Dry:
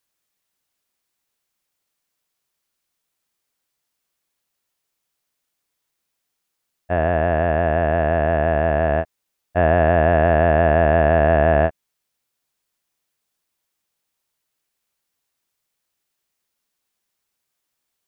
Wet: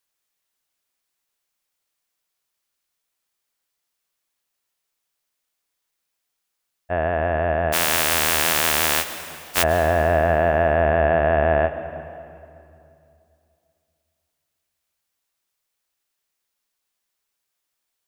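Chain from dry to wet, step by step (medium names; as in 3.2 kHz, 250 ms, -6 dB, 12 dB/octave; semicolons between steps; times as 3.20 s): 7.72–9.62 s: spectral contrast reduction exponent 0.15; peaking EQ 150 Hz -6 dB 2.8 oct; reverberation RT60 2.6 s, pre-delay 116 ms, DRR 11.5 dB; trim -1 dB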